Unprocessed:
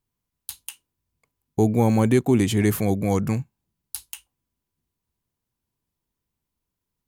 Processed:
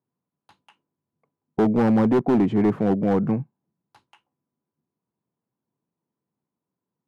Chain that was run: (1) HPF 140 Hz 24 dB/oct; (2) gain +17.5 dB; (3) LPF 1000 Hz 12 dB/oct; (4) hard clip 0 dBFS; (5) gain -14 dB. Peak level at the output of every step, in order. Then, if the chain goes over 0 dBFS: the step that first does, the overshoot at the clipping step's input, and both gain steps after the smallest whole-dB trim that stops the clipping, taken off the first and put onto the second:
-8.0, +9.5, +9.0, 0.0, -14.0 dBFS; step 2, 9.0 dB; step 2 +8.5 dB, step 5 -5 dB

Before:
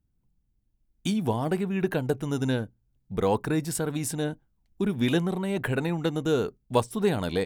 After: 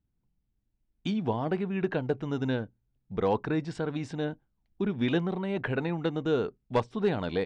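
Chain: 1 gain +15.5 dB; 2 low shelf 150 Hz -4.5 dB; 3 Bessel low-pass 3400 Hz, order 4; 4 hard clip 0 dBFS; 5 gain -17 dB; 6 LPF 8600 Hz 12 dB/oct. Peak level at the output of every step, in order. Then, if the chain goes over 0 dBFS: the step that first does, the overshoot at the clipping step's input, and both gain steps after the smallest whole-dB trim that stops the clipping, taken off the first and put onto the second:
+7.0, +7.5, +7.0, 0.0, -17.0, -17.0 dBFS; step 1, 7.0 dB; step 1 +8.5 dB, step 5 -10 dB

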